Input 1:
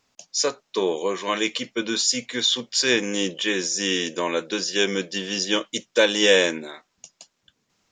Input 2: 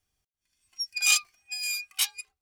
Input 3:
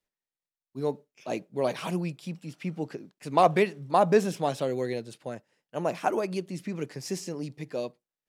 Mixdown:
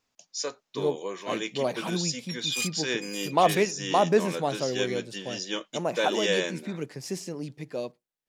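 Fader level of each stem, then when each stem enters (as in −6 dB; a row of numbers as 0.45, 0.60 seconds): −9.5, −9.0, −0.5 decibels; 0.00, 1.50, 0.00 seconds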